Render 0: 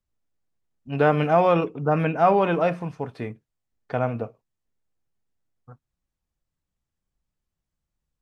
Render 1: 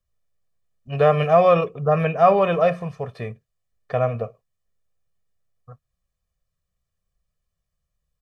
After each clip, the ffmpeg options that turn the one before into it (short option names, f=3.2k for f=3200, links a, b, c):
-af "aecho=1:1:1.7:0.82"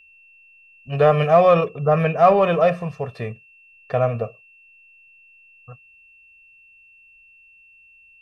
-filter_complex "[0:a]asplit=2[a][b];[b]asoftclip=type=tanh:threshold=-15.5dB,volume=-11dB[c];[a][c]amix=inputs=2:normalize=0,aeval=exprs='val(0)+0.00355*sin(2*PI*2700*n/s)':c=same"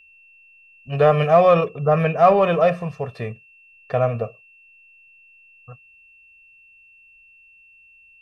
-af anull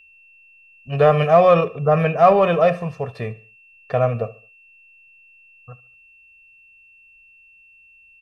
-af "aecho=1:1:72|144|216:0.0944|0.0368|0.0144,volume=1dB"